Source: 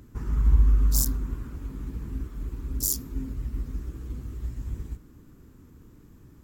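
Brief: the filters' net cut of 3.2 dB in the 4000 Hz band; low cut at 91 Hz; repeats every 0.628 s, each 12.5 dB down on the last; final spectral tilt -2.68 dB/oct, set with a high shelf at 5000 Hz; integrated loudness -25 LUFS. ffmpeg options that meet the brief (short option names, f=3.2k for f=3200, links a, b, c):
-af "highpass=91,equalizer=f=4k:t=o:g=-8,highshelf=f=5k:g=4,aecho=1:1:628|1256|1884:0.237|0.0569|0.0137,volume=6.5dB"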